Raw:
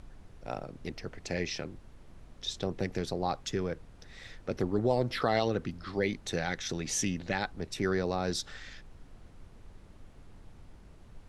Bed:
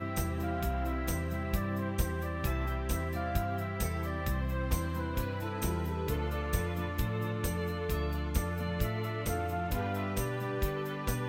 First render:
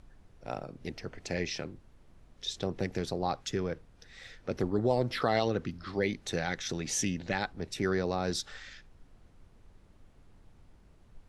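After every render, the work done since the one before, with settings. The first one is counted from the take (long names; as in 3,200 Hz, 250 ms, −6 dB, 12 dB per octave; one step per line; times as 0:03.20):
noise reduction from a noise print 6 dB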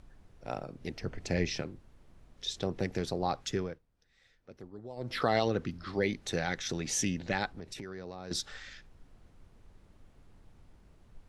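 0:01.01–0:01.62: low-shelf EQ 250 Hz +7.5 dB
0:03.57–0:05.19: duck −17.5 dB, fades 0.23 s
0:07.48–0:08.31: downward compressor 10 to 1, threshold −38 dBFS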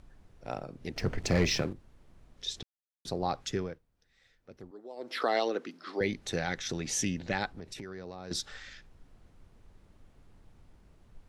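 0:00.96–0:01.73: leveller curve on the samples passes 2
0:02.63–0:03.05: silence
0:04.71–0:06.01: high-pass filter 280 Hz 24 dB per octave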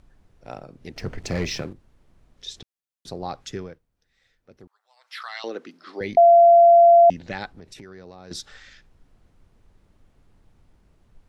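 0:04.67–0:05.44: inverse Chebyshev high-pass filter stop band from 320 Hz, stop band 60 dB
0:06.17–0:07.10: beep over 685 Hz −8.5 dBFS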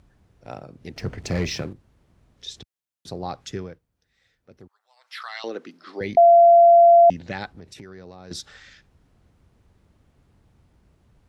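high-pass filter 69 Hz 12 dB per octave
low-shelf EQ 100 Hz +8 dB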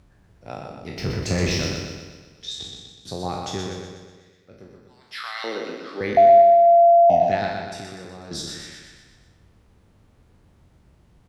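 peak hold with a decay on every bin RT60 0.70 s
on a send: repeating echo 123 ms, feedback 55%, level −5 dB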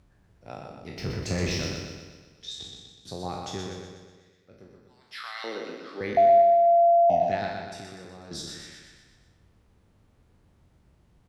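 level −5.5 dB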